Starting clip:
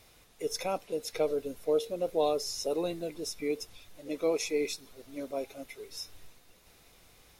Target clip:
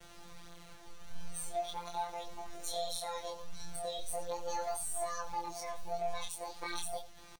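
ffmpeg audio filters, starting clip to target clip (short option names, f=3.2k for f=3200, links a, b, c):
-filter_complex "[0:a]areverse,lowpass=f=2.3k:p=1,acrossover=split=110|1400[a][b][c];[b]acompressor=threshold=-42dB:ratio=12[d];[a][d][c]amix=inputs=3:normalize=0,alimiter=level_in=12dB:limit=-24dB:level=0:latency=1:release=78,volume=-12dB,asoftclip=type=tanh:threshold=-37.5dB,asetrate=72056,aresample=44100,atempo=0.612027,afftfilt=real='hypot(re,im)*cos(PI*b)':imag='0':win_size=1024:overlap=0.75,flanger=delay=20:depth=7.8:speed=0.41,asplit=2[e][f];[f]aecho=0:1:82:0.168[g];[e][g]amix=inputs=2:normalize=0,volume=15dB"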